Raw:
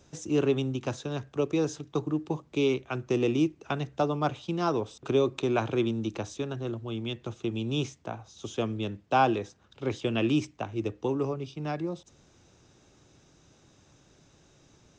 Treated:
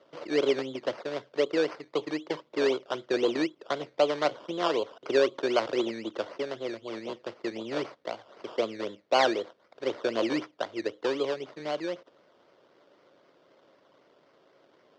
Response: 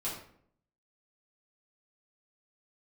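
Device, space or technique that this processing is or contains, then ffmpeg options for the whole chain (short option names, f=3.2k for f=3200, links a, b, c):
circuit-bent sampling toy: -af "acrusher=samples=17:mix=1:aa=0.000001:lfo=1:lforange=10.2:lforate=3.9,highpass=520,equalizer=f=550:t=q:w=4:g=5,equalizer=f=810:t=q:w=4:g=-8,equalizer=f=1.2k:t=q:w=4:g=-4,equalizer=f=1.7k:t=q:w=4:g=-7,equalizer=f=2.5k:t=q:w=4:g=-9,equalizer=f=3.9k:t=q:w=4:g=-5,lowpass=f=4.4k:w=0.5412,lowpass=f=4.4k:w=1.3066,volume=6dB"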